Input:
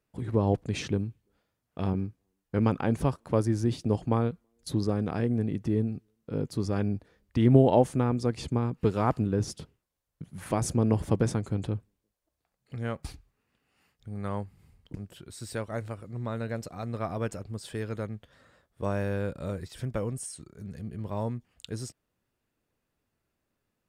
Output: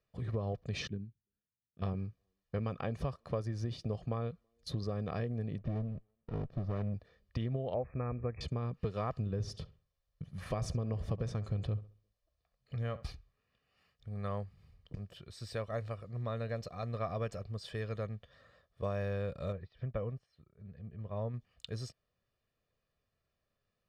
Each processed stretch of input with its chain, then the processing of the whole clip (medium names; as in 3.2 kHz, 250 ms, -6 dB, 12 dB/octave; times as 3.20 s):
0.87–1.82 s: amplifier tone stack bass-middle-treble 6-0-2 + small resonant body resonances 240/350/1500 Hz, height 16 dB, ringing for 20 ms + upward expansion, over -46 dBFS
5.58–6.94 s: low-pass 2.1 kHz + sliding maximum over 33 samples
7.74–8.41 s: brick-wall FIR low-pass 2.6 kHz + resonant low shelf 100 Hz +7.5 dB, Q 1.5
9.13–13.04 s: bass shelf 66 Hz +11 dB + filtered feedback delay 67 ms, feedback 31%, low-pass 3.1 kHz, level -17.5 dB
19.52–21.34 s: distance through air 320 m + upward expansion, over -50 dBFS
whole clip: compression 12:1, threshold -27 dBFS; resonant high shelf 6.4 kHz -9 dB, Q 1.5; comb 1.7 ms, depth 57%; trim -5 dB